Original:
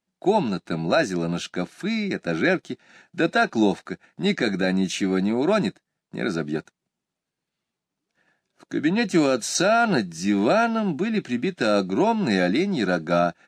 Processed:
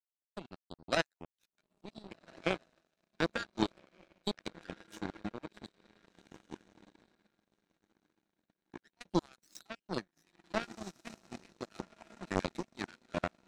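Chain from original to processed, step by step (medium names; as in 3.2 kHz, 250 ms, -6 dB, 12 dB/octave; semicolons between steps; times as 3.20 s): random holes in the spectrogram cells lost 58%; echo that smears into a reverb 1504 ms, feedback 50%, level -4.5 dB; power-law waveshaper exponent 3; trim -1.5 dB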